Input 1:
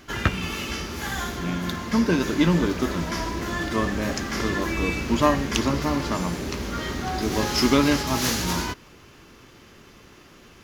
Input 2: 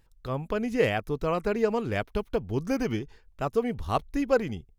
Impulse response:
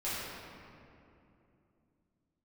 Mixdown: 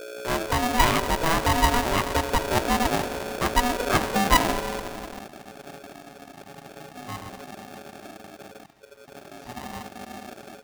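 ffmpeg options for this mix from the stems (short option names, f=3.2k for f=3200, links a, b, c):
-filter_complex "[0:a]adelay=1850,volume=-11.5dB,asplit=2[a][b];[b]volume=-11.5dB[c];[1:a]aeval=exprs='val(0)+0.00891*(sin(2*PI*60*n/s)+sin(2*PI*2*60*n/s)/2+sin(2*PI*3*60*n/s)/3+sin(2*PI*4*60*n/s)/4+sin(2*PI*5*60*n/s)/5)':c=same,volume=3dB,asplit=3[d][e][f];[e]volume=-13dB[g];[f]apad=whole_len=550806[h];[a][h]sidechaingate=range=-14dB:threshold=-28dB:ratio=16:detection=peak[i];[2:a]atrim=start_sample=2205[j];[c][g]amix=inputs=2:normalize=0[k];[k][j]afir=irnorm=-1:irlink=0[l];[i][d][l]amix=inputs=3:normalize=0,afwtdn=0.0355,aeval=exprs='val(0)*sgn(sin(2*PI*490*n/s))':c=same"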